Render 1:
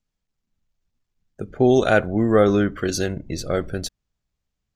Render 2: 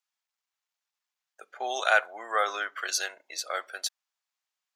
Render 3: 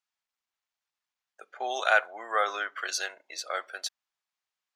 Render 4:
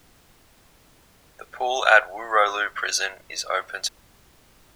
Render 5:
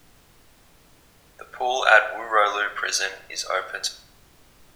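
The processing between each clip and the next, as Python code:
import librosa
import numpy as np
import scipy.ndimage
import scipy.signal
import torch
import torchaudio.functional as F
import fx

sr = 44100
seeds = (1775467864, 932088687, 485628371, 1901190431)

y1 = scipy.signal.sosfilt(scipy.signal.butter(4, 800.0, 'highpass', fs=sr, output='sos'), x)
y2 = fx.high_shelf(y1, sr, hz=7800.0, db=-9.5)
y3 = fx.dmg_noise_colour(y2, sr, seeds[0], colour='pink', level_db=-63.0)
y3 = y3 * 10.0 ** (7.5 / 20.0)
y4 = fx.room_shoebox(y3, sr, seeds[1], volume_m3=160.0, walls='mixed', distance_m=0.31)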